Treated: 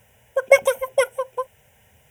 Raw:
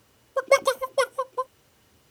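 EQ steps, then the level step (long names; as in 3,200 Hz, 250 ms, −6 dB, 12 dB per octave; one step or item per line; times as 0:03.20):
phaser with its sweep stopped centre 1,200 Hz, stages 6
+7.0 dB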